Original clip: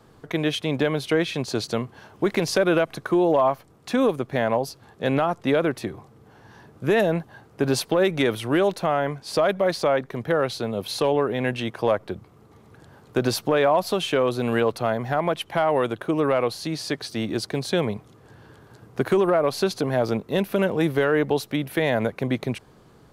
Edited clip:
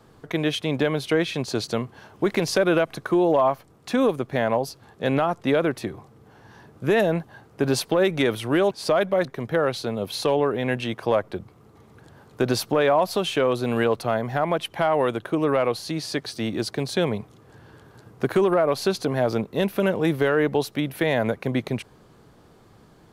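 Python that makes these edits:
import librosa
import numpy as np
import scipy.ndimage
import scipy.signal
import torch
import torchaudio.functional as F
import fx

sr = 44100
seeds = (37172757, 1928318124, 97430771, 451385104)

y = fx.edit(x, sr, fx.cut(start_s=8.71, length_s=0.48),
    fx.cut(start_s=9.73, length_s=0.28), tone=tone)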